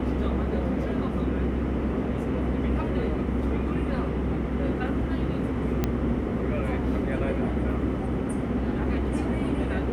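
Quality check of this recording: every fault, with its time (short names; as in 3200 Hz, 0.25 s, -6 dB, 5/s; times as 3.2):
5.84 pop -11 dBFS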